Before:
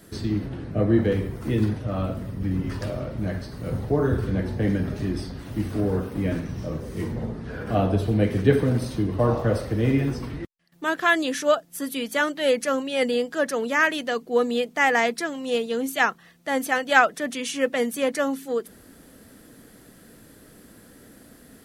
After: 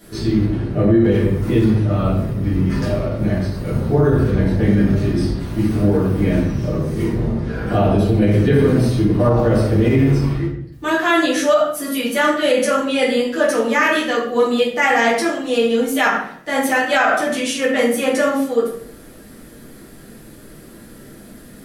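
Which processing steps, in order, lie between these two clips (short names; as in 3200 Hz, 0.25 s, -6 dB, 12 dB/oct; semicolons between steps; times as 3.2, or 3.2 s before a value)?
shoebox room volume 99 m³, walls mixed, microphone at 1.9 m; limiter -6 dBFS, peak gain reduction 8.5 dB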